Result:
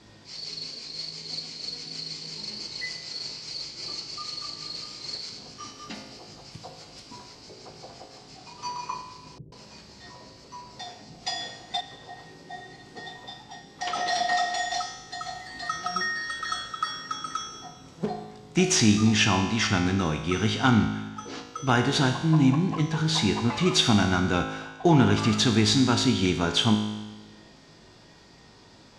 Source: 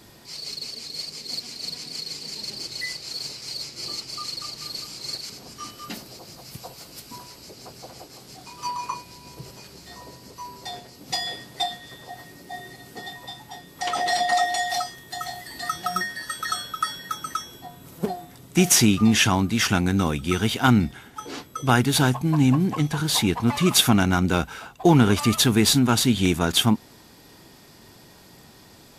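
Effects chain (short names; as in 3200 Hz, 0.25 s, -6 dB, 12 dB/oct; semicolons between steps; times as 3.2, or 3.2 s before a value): LPF 6600 Hz 24 dB/oct; resonator 53 Hz, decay 1.2 s, harmonics all, mix 80%; 9.38–11.81 bands offset in time lows, highs 0.14 s, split 390 Hz; gain +7.5 dB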